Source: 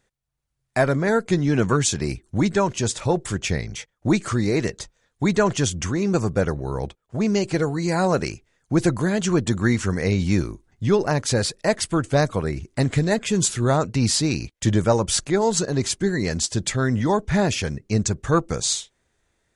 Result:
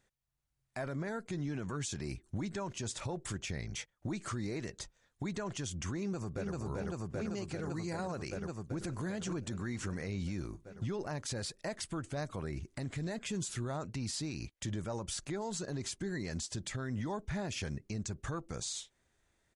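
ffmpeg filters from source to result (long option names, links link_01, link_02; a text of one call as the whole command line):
ffmpeg -i in.wav -filter_complex "[0:a]asplit=2[link_01][link_02];[link_02]afade=type=in:start_time=5.98:duration=0.01,afade=type=out:start_time=6.53:duration=0.01,aecho=0:1:390|780|1170|1560|1950|2340|2730|3120|3510|3900|4290|4680:1|0.75|0.5625|0.421875|0.316406|0.237305|0.177979|0.133484|0.100113|0.0750847|0.0563135|0.0422351[link_03];[link_01][link_03]amix=inputs=2:normalize=0,asplit=2[link_04][link_05];[link_05]afade=type=in:start_time=8.29:duration=0.01,afade=type=out:start_time=8.78:duration=0.01,aecho=0:1:550|1100|1650:0.316228|0.0948683|0.0284605[link_06];[link_04][link_06]amix=inputs=2:normalize=0,equalizer=frequency=460:width=6:gain=-4,acompressor=threshold=-31dB:ratio=2,alimiter=limit=-24dB:level=0:latency=1:release=54,volume=-5.5dB" out.wav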